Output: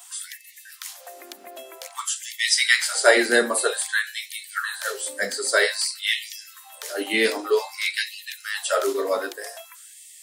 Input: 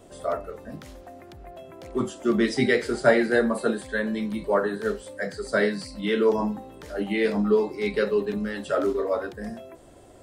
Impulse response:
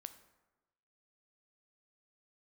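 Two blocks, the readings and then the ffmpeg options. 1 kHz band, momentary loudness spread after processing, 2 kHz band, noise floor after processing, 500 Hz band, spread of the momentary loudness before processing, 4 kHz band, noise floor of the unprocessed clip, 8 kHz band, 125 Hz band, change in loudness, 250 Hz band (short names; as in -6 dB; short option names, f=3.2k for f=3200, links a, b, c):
+1.5 dB, 22 LU, +7.0 dB, -47 dBFS, -1.5 dB, 18 LU, +13.0 dB, -49 dBFS, +18.5 dB, under -20 dB, +2.5 dB, -8.5 dB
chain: -af "crystalizer=i=7.5:c=0,afftfilt=real='re*gte(b*sr/1024,210*pow(1800/210,0.5+0.5*sin(2*PI*0.52*pts/sr)))':imag='im*gte(b*sr/1024,210*pow(1800/210,0.5+0.5*sin(2*PI*0.52*pts/sr)))':win_size=1024:overlap=0.75"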